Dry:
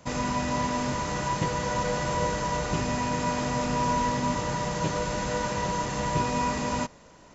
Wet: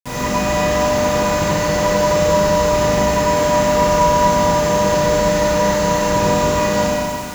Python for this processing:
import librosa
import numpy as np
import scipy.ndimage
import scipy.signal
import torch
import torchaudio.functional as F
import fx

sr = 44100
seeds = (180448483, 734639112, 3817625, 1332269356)

y = fx.rev_schroeder(x, sr, rt60_s=2.5, comb_ms=31, drr_db=-8.0)
y = fx.quant_dither(y, sr, seeds[0], bits=6, dither='none')
y = y * librosa.db_to_amplitude(2.5)